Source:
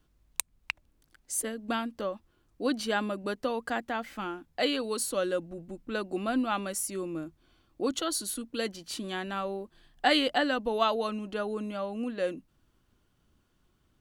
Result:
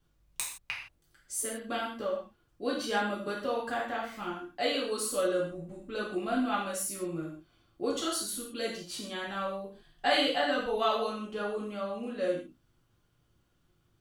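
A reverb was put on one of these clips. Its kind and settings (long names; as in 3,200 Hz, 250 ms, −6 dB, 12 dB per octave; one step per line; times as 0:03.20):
reverb whose tail is shaped and stops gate 190 ms falling, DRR −5.5 dB
level −7.5 dB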